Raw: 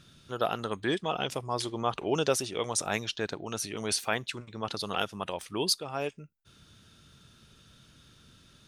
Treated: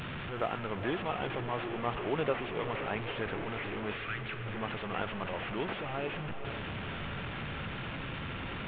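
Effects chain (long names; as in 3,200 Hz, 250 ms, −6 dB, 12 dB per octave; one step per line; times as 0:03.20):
linear delta modulator 16 kbit/s, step −28 dBFS
0:03.94–0:04.46: linear-phase brick-wall band-stop 180–1,100 Hz
feedback delay with all-pass diffusion 469 ms, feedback 59%, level −9 dB
level −4.5 dB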